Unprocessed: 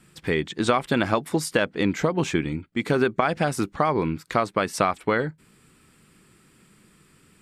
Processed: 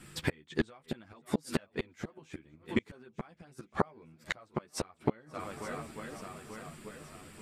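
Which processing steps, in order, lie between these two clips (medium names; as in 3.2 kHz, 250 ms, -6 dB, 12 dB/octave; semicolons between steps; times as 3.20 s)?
in parallel at +2.5 dB: peak limiter -15.5 dBFS, peak gain reduction 10 dB; on the sum: shuffle delay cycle 885 ms, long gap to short 1.5:1, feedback 44%, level -21 dB; inverted gate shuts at -10 dBFS, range -35 dB; chorus voices 4, 1 Hz, delay 11 ms, depth 3 ms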